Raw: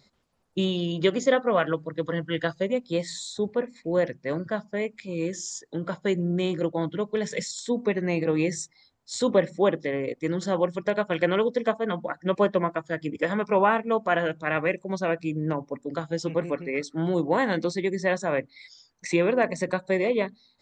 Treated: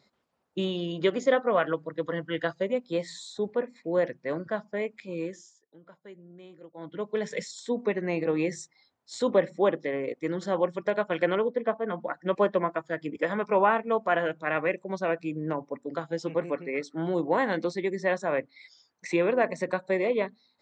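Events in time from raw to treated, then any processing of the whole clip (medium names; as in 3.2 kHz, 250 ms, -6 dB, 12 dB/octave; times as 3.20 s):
5.15–7.12 s: dip -19.5 dB, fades 0.38 s
11.35–12.00 s: distance through air 360 m
whole clip: high-pass 300 Hz 6 dB/octave; treble shelf 3.6 kHz -10 dB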